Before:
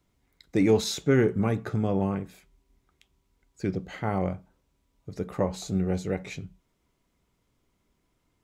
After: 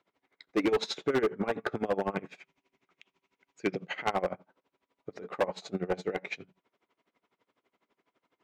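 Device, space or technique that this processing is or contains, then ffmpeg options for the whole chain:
helicopter radio: -filter_complex "[0:a]highpass=400,lowpass=2900,aeval=exprs='val(0)*pow(10,-22*(0.5-0.5*cos(2*PI*12*n/s))/20)':c=same,asoftclip=type=hard:threshold=0.0299,asettb=1/sr,asplit=3[s0][s1][s2];[s0]atrim=end=2.164[s3];[s1]atrim=start=2.16:end=4.1,asetpts=PTS-STARTPTS,afade=t=in:d=0.004:c=qsin,afade=t=out:st=1.936:d=0.004:c=qsin,equalizer=f=160:t=o:w=0.67:g=6,equalizer=f=2500:t=o:w=0.67:g=7,equalizer=f=6300:t=o:w=0.67:g=7[s4];[s2]atrim=start=4.096[s5];[s3][s4]acrossfade=d=0.004:c1=hsin:c2=qsin[s6];[s6][s5]acrossfade=d=0.004:c1=qsin:c2=hsin,volume=2.82"

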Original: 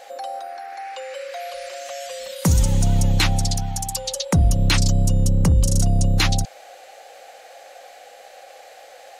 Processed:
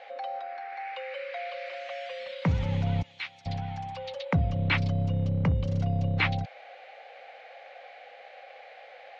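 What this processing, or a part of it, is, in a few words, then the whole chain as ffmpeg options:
guitar cabinet: -filter_complex "[0:a]acrossover=split=3200[s0][s1];[s1]acompressor=threshold=0.0251:ratio=4:attack=1:release=60[s2];[s0][s2]amix=inputs=2:normalize=0,asettb=1/sr,asplit=3[s3][s4][s5];[s3]atrim=end=3.024[s6];[s4]atrim=start=3.02:end=3.46,asetpts=PTS-STARTPTS,afade=t=in:d=0.004:c=qsin,afade=t=out:st=0.436:d=0.004:c=qsin,aderivative[s7];[s5]atrim=start=3.456[s8];[s6][s7]acrossfade=d=0.004:c1=hsin:c2=qsin[s9];[s9][s8]acrossfade=d=0.004:c1=qsin:c2=hsin,highpass=97,equalizer=f=210:t=q:w=4:g=-5,equalizer=f=340:t=q:w=4:g=-9,equalizer=f=2200:t=q:w=4:g=7,lowpass=f=3600:w=0.5412,lowpass=f=3600:w=1.3066,volume=0.596"

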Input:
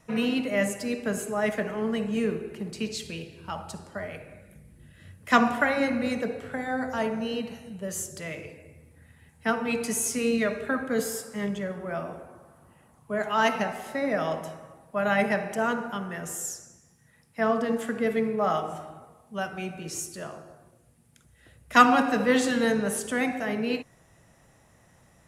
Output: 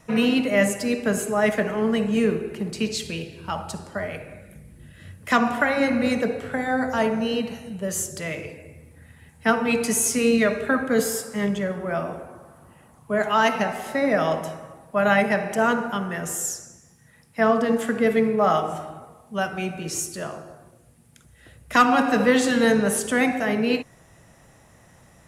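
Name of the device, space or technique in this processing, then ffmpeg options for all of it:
clipper into limiter: -af "asoftclip=type=hard:threshold=0.398,alimiter=limit=0.2:level=0:latency=1:release=429,volume=2"

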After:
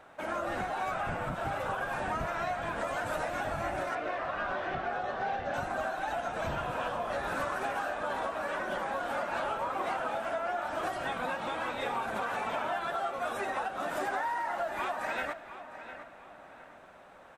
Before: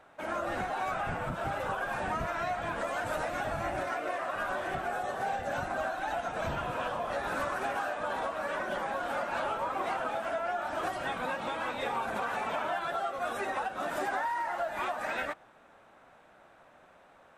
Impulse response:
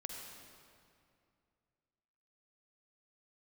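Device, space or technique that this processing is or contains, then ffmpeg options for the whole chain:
ducked reverb: -filter_complex "[0:a]asettb=1/sr,asplit=3[s0][s1][s2];[s0]atrim=end=3.954[s3];[s1]atrim=start=3.95:end=5.54,asetpts=PTS-STARTPTS,afade=t=in:d=0.004:c=qsin,afade=t=out:st=1.586:d=0.004:c=qsin,lowpass=f=5100:w=0.5412,lowpass=f=5100:w=1.3066[s4];[s2]atrim=start=5.536[s5];[s3][s4]acrossfade=d=0.004:c1=hsin:c2=qsin[s6];[s6][s5]acrossfade=d=0.004:c1=qsin:c2=hsin,asplit=2[s7][s8];[s8]adelay=706,lowpass=f=4000:p=1,volume=0.224,asplit=2[s9][s10];[s10]adelay=706,lowpass=f=4000:p=1,volume=0.27,asplit=2[s11][s12];[s12]adelay=706,lowpass=f=4000:p=1,volume=0.27[s13];[s7][s9][s11][s13]amix=inputs=4:normalize=0,asplit=3[s14][s15][s16];[1:a]atrim=start_sample=2205[s17];[s15][s17]afir=irnorm=-1:irlink=0[s18];[s16]apad=whole_len=786453[s19];[s18][s19]sidechaincompress=threshold=0.00891:ratio=8:attack=16:release=1190,volume=1.26[s20];[s14][s20]amix=inputs=2:normalize=0,volume=0.794"

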